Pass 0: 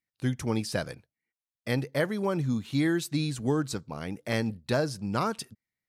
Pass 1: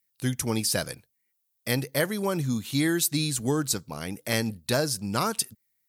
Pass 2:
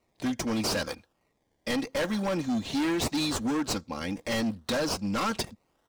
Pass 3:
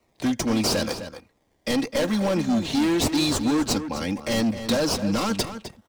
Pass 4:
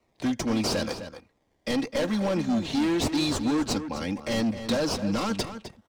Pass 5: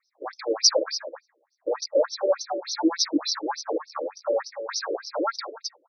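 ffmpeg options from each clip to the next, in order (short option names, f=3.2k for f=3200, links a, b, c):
-af "aemphasis=mode=production:type=75fm,volume=1.5dB"
-filter_complex "[0:a]aecho=1:1:3.7:0.83,acrossover=split=140|7100[a][b][c];[c]acrusher=samples=26:mix=1:aa=0.000001:lfo=1:lforange=15.6:lforate=0.8[d];[a][b][d]amix=inputs=3:normalize=0,volume=25dB,asoftclip=hard,volume=-25dB"
-filter_complex "[0:a]acrossover=split=170|860|2800[a][b][c][d];[c]alimiter=level_in=11dB:limit=-24dB:level=0:latency=1,volume=-11dB[e];[a][b][e][d]amix=inputs=4:normalize=0,asplit=2[f][g];[g]adelay=256.6,volume=-10dB,highshelf=f=4k:g=-5.77[h];[f][h]amix=inputs=2:normalize=0,volume=6dB"
-af "highshelf=f=9k:g=-9,volume=-3dB"
-af "crystalizer=i=6:c=0,asuperstop=centerf=3000:order=4:qfactor=0.77,afftfilt=real='re*between(b*sr/1024,400*pow(4500/400,0.5+0.5*sin(2*PI*3.4*pts/sr))/1.41,400*pow(4500/400,0.5+0.5*sin(2*PI*3.4*pts/sr))*1.41)':imag='im*between(b*sr/1024,400*pow(4500/400,0.5+0.5*sin(2*PI*3.4*pts/sr))/1.41,400*pow(4500/400,0.5+0.5*sin(2*PI*3.4*pts/sr))*1.41)':win_size=1024:overlap=0.75,volume=8dB"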